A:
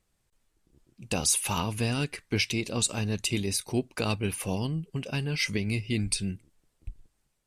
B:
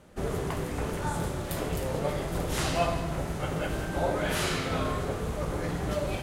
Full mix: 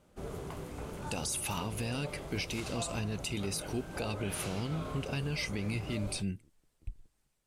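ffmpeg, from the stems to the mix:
-filter_complex "[0:a]alimiter=limit=-20.5dB:level=0:latency=1:release=10,volume=-2dB[a];[1:a]equalizer=f=1.8k:t=o:w=0.23:g=-6.5,volume=-10dB[b];[a][b]amix=inputs=2:normalize=0,alimiter=level_in=1.5dB:limit=-24dB:level=0:latency=1:release=157,volume=-1.5dB"

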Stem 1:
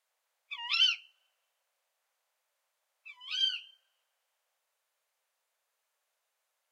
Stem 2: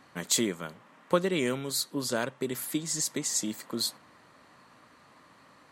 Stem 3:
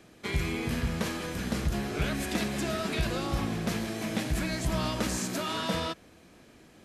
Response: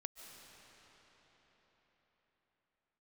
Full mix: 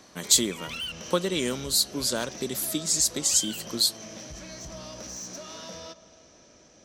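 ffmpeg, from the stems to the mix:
-filter_complex "[0:a]lowpass=2.8k,volume=2dB,asplit=3[a][b][c];[a]atrim=end=0.92,asetpts=PTS-STARTPTS,afade=t=out:st=0.916:d=0.004:c=hsin[d];[b]atrim=start=0.92:end=3.22,asetpts=PTS-STARTPTS,volume=0[e];[c]atrim=start=3.22,asetpts=PTS-STARTPTS,afade=t=in:d=0.004:c=hsin[f];[d][e][f]concat=n=3:v=0:a=1,asplit=2[g][h];[h]volume=-8dB[i];[1:a]highshelf=f=2.9k:t=q:w=1.5:g=6.5,volume=0dB,asplit=2[j][k];[2:a]equalizer=f=580:t=o:w=0.5:g=9.5,acompressor=threshold=-38dB:ratio=2,lowpass=f=5.9k:t=q:w=13,volume=-6.5dB,asplit=2[l][m];[m]volume=-7.5dB[n];[k]apad=whole_len=301842[o];[l][o]sidechaincompress=threshold=-26dB:ratio=8:attack=16:release=331[p];[g][p]amix=inputs=2:normalize=0,asoftclip=type=tanh:threshold=-33.5dB,alimiter=level_in=13dB:limit=-24dB:level=0:latency=1,volume=-13dB,volume=0dB[q];[3:a]atrim=start_sample=2205[r];[i][n]amix=inputs=2:normalize=0[s];[s][r]afir=irnorm=-1:irlink=0[t];[j][q][t]amix=inputs=3:normalize=0"

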